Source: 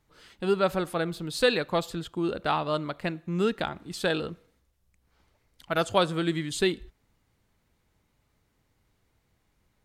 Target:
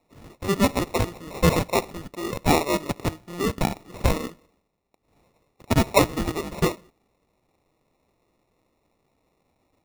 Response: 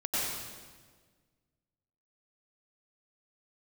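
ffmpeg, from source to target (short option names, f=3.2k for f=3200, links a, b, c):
-af "bandpass=f=1.4k:t=q:w=0.76:csg=0,equalizer=f=1.8k:w=1:g=8,acrusher=samples=28:mix=1:aa=0.000001,volume=5.5dB"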